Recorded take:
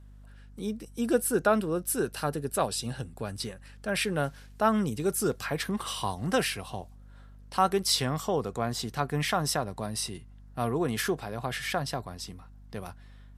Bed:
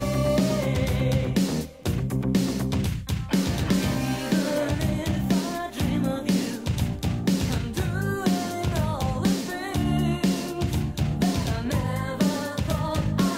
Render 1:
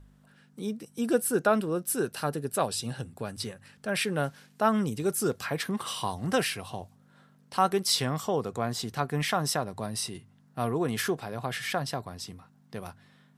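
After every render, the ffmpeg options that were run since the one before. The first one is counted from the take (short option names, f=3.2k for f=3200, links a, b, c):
-af "bandreject=f=50:t=h:w=4,bandreject=f=100:t=h:w=4"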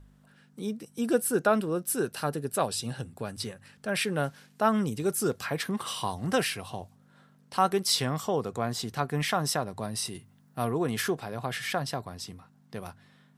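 -filter_complex "[0:a]asettb=1/sr,asplit=3[a][b][c];[a]atrim=end=10.054[d];[b]atrim=start=10.05:end=10.65,asetpts=PTS-STARTPTS,afade=t=in:d=0.004:c=qsin,afade=t=out:st=0.596:d=0.004:c=qsin,highshelf=f=11k:g=11.5[e];[c]atrim=start=10.646[f];[d][e]acrossfade=d=0.004:c1=hsin:c2=qsin[g];[g][f]acrossfade=d=0.004:c1=qsin:c2=hsin"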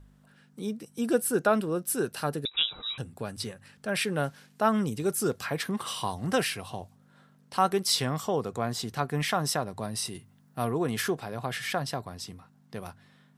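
-filter_complex "[0:a]asettb=1/sr,asplit=3[a][b][c];[a]atrim=end=2.454[d];[b]atrim=start=2.45:end=2.98,asetpts=PTS-STARTPTS,afade=t=in:d=0.004:c=qsin,afade=t=out:st=0.526:d=0.004:c=qsin,lowpass=f=3.4k:t=q:w=0.5098,lowpass=f=3.4k:t=q:w=0.6013,lowpass=f=3.4k:t=q:w=0.9,lowpass=f=3.4k:t=q:w=2.563,afreqshift=-4000[e];[c]atrim=start=2.976[f];[d][e]acrossfade=d=0.004:c1=hsin:c2=qsin[g];[g][f]acrossfade=d=0.004:c1=qsin:c2=hsin"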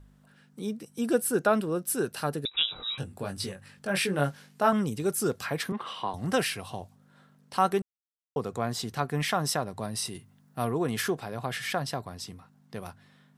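-filter_complex "[0:a]asettb=1/sr,asplit=3[a][b][c];[a]atrim=end=2.664[d];[b]atrim=start=2.66:end=4.73,asetpts=PTS-STARTPTS,afade=t=in:d=0.004:c=qsin,afade=t=out:st=2.066:d=0.004:c=qsin,asplit=2[e][f];[f]adelay=21,volume=-4.5dB[g];[e][g]amix=inputs=2:normalize=0,atrim=end_sample=91287[h];[c]atrim=start=4.726[i];[d][h]acrossfade=d=0.004:c1=hsin:c2=qsin[j];[j][i]acrossfade=d=0.004:c1=qsin:c2=hsin,asettb=1/sr,asplit=3[k][l][m];[k]atrim=end=5.724[n];[l]atrim=start=5.72:end=6.14,asetpts=PTS-STARTPTS,afade=t=in:d=0.004:c=qsin,afade=t=out:st=0.416:d=0.004:c=qsin,acrossover=split=200 3500:gain=0.251 1 0.0708[o][p][q];[o][p][q]amix=inputs=3:normalize=0[r];[m]atrim=start=6.136[s];[n][r]acrossfade=d=0.004:c1=hsin:c2=qsin[t];[t][s]acrossfade=d=0.004:c1=qsin:c2=hsin,asplit=3[u][v][w];[u]atrim=end=7.82,asetpts=PTS-STARTPTS,afade=t=out:st=7.816:d=0.004:c=hsin[x];[v]atrim=start=7.82:end=8.36,asetpts=PTS-STARTPTS,volume=0[y];[w]atrim=start=8.36,asetpts=PTS-STARTPTS,afade=t=in:d=0.004:c=hsin[z];[x][y][z]concat=n=3:v=0:a=1"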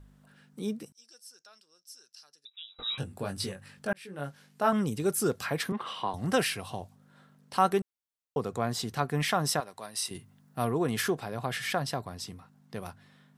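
-filter_complex "[0:a]asettb=1/sr,asplit=3[a][b][c];[a]atrim=end=0.924[d];[b]atrim=start=0.92:end=2.79,asetpts=PTS-STARTPTS,afade=t=in:d=0.004:c=qsin,afade=t=out:st=1.866:d=0.004:c=qsin,bandpass=f=5.4k:t=q:w=8.1[e];[c]atrim=start=2.786[f];[d][e]acrossfade=d=0.004:c1=hsin:c2=qsin[g];[g][f]acrossfade=d=0.004:c1=qsin:c2=hsin,asettb=1/sr,asplit=3[h][i][j];[h]atrim=end=9.604[k];[i]atrim=start=9.6:end=10.11,asetpts=PTS-STARTPTS,afade=t=in:d=0.004:c=qsin,afade=t=out:st=0.506:d=0.004:c=qsin,highpass=f=1.2k:p=1[l];[j]atrim=start=10.106[m];[k][l]acrossfade=d=0.004:c1=hsin:c2=qsin[n];[n][m]acrossfade=d=0.004:c1=qsin:c2=hsin,asplit=2[o][p];[o]atrim=end=3.93,asetpts=PTS-STARTPTS,afade=t=out:st=3.926:d=0.004:c=hsin[q];[p]atrim=start=3.93,asetpts=PTS-STARTPTS,afade=t=in:d=0.97[r];[q][r]concat=n=2:v=0:a=1"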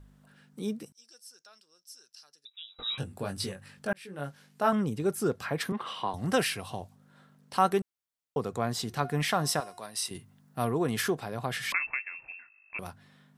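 -filter_complex "[0:a]asettb=1/sr,asplit=3[a][b][c];[a]atrim=end=4.754[d];[b]atrim=start=4.75:end=5.61,asetpts=PTS-STARTPTS,afade=t=in:d=0.004:c=qsin,afade=t=out:st=0.856:d=0.004:c=qsin,highshelf=f=3.3k:g=-8.5[e];[c]atrim=start=5.606[f];[d][e]acrossfade=d=0.004:c1=hsin:c2=qsin[g];[g][f]acrossfade=d=0.004:c1=qsin:c2=hsin,asettb=1/sr,asplit=3[h][i][j];[h]atrim=end=8.844[k];[i]atrim=start=8.84:end=9.93,asetpts=PTS-STARTPTS,afade=t=in:d=0.004:c=qsin,afade=t=out:st=1.086:d=0.004:c=qsin,bandreject=f=357.1:t=h:w=4,bandreject=f=714.2:t=h:w=4,bandreject=f=1.0713k:t=h:w=4,bandreject=f=1.4284k:t=h:w=4,bandreject=f=1.7855k:t=h:w=4,bandreject=f=2.1426k:t=h:w=4,bandreject=f=2.4997k:t=h:w=4,bandreject=f=2.8568k:t=h:w=4,bandreject=f=3.2139k:t=h:w=4,bandreject=f=3.571k:t=h:w=4,bandreject=f=3.9281k:t=h:w=4,bandreject=f=4.2852k:t=h:w=4,bandreject=f=4.6423k:t=h:w=4,bandreject=f=4.9994k:t=h:w=4,bandreject=f=5.3565k:t=h:w=4,bandreject=f=5.7136k:t=h:w=4,bandreject=f=6.0707k:t=h:w=4,bandreject=f=6.4278k:t=h:w=4,bandreject=f=6.7849k:t=h:w=4,bandreject=f=7.142k:t=h:w=4,bandreject=f=7.4991k:t=h:w=4,bandreject=f=7.8562k:t=h:w=4,bandreject=f=8.2133k:t=h:w=4,bandreject=f=8.5704k:t=h:w=4,bandreject=f=8.9275k:t=h:w=4,bandreject=f=9.2846k:t=h:w=4,bandreject=f=9.6417k:t=h:w=4,bandreject=f=9.9988k:t=h:w=4,bandreject=f=10.3559k:t=h:w=4,bandreject=f=10.713k:t=h:w=4,bandreject=f=11.0701k:t=h:w=4,bandreject=f=11.4272k:t=h:w=4,bandreject=f=11.7843k:t=h:w=4,bandreject=f=12.1414k:t=h:w=4,bandreject=f=12.4985k:t=h:w=4,bandreject=f=12.8556k:t=h:w=4,bandreject=f=13.2127k:t=h:w=4[l];[j]atrim=start=9.926[m];[k][l]acrossfade=d=0.004:c1=hsin:c2=qsin[n];[n][m]acrossfade=d=0.004:c1=qsin:c2=hsin,asettb=1/sr,asplit=3[o][p][q];[o]atrim=end=11.724[r];[p]atrim=start=11.72:end=12.79,asetpts=PTS-STARTPTS,afade=t=in:d=0.004:c=qsin,afade=t=out:st=1.066:d=0.004:c=qsin,lowpass=f=2.4k:t=q:w=0.5098,lowpass=f=2.4k:t=q:w=0.6013,lowpass=f=2.4k:t=q:w=0.9,lowpass=f=2.4k:t=q:w=2.563,afreqshift=-2800[s];[q]atrim=start=12.786[t];[r][s]acrossfade=d=0.004:c1=hsin:c2=qsin[u];[u][t]acrossfade=d=0.004:c1=qsin:c2=hsin"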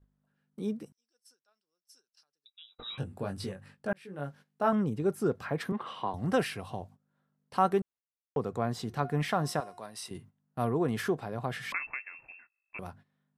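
-af "agate=range=-17dB:threshold=-51dB:ratio=16:detection=peak,highshelf=f=2.3k:g=-11"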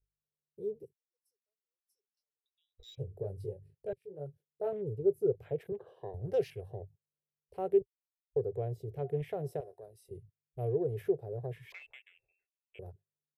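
-af "afwtdn=0.00708,firequalizer=gain_entry='entry(120,0);entry(240,-28);entry(400,4);entry(1100,-29);entry(2200,-14);entry(8200,-7);entry(12000,5)':delay=0.05:min_phase=1"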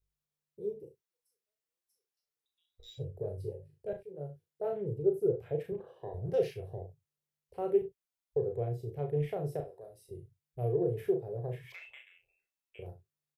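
-filter_complex "[0:a]asplit=2[a][b];[b]adelay=34,volume=-6dB[c];[a][c]amix=inputs=2:normalize=0,asplit=2[d][e];[e]aecho=0:1:40|63:0.335|0.158[f];[d][f]amix=inputs=2:normalize=0"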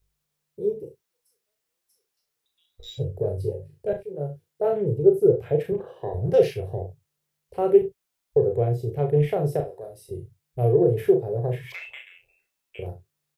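-af "volume=11.5dB"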